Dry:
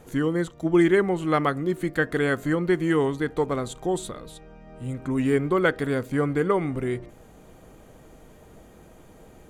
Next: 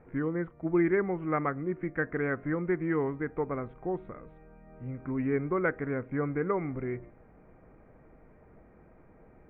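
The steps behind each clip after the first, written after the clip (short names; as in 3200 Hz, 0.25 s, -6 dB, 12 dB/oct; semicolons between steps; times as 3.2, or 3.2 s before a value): Chebyshev low-pass 2300 Hz, order 5; gain -6.5 dB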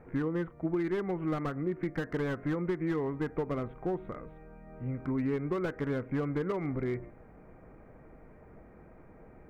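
compressor 16:1, threshold -30 dBFS, peak gain reduction 10 dB; slew limiter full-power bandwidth 16 Hz; gain +3 dB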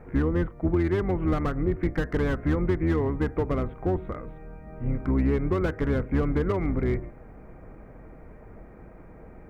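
octaver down 2 oct, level +1 dB; gain +5.5 dB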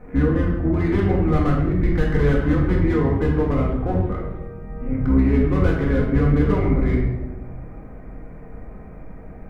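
shoebox room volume 390 m³, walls mixed, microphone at 1.9 m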